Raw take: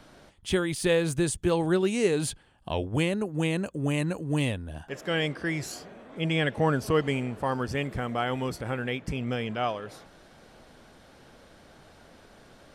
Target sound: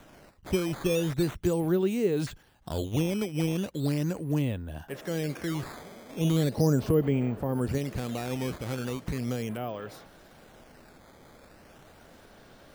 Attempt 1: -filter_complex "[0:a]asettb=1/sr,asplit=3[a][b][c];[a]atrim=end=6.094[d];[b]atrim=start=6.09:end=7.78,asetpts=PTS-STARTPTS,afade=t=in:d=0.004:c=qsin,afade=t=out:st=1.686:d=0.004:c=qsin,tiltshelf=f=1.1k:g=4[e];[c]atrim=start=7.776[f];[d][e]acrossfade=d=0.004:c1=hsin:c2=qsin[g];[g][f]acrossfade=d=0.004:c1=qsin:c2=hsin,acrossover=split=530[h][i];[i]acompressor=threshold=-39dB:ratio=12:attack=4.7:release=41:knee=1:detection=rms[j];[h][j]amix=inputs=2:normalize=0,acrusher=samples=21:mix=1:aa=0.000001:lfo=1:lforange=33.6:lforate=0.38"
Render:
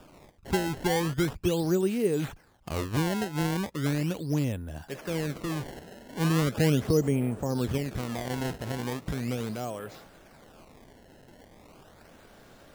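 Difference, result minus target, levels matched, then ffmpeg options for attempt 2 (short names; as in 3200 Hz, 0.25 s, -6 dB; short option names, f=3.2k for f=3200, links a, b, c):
decimation with a swept rate: distortion +7 dB
-filter_complex "[0:a]asettb=1/sr,asplit=3[a][b][c];[a]atrim=end=6.094[d];[b]atrim=start=6.09:end=7.78,asetpts=PTS-STARTPTS,afade=t=in:d=0.004:c=qsin,afade=t=out:st=1.686:d=0.004:c=qsin,tiltshelf=f=1.1k:g=4[e];[c]atrim=start=7.776[f];[d][e]acrossfade=d=0.004:c1=hsin:c2=qsin[g];[g][f]acrossfade=d=0.004:c1=qsin:c2=hsin,acrossover=split=530[h][i];[i]acompressor=threshold=-39dB:ratio=12:attack=4.7:release=41:knee=1:detection=rms[j];[h][j]amix=inputs=2:normalize=0,acrusher=samples=9:mix=1:aa=0.000001:lfo=1:lforange=14.4:lforate=0.38"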